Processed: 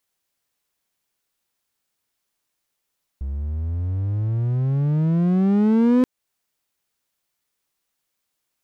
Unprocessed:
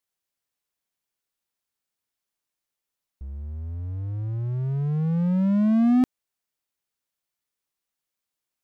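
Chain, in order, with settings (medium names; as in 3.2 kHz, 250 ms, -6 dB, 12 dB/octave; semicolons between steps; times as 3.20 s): compression 1.5:1, threshold -31 dBFS, peak gain reduction 5.5 dB; loudspeaker Doppler distortion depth 0.31 ms; trim +8 dB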